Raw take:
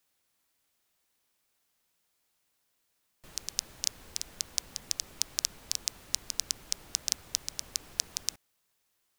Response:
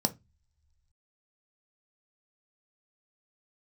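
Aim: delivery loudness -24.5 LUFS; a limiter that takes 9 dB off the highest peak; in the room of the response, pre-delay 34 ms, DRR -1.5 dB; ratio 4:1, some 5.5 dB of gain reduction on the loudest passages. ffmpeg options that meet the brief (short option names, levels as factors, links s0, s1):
-filter_complex "[0:a]acompressor=threshold=0.0282:ratio=4,alimiter=limit=0.15:level=0:latency=1,asplit=2[s0][s1];[1:a]atrim=start_sample=2205,adelay=34[s2];[s1][s2]afir=irnorm=-1:irlink=0,volume=0.562[s3];[s0][s3]amix=inputs=2:normalize=0,volume=5.31"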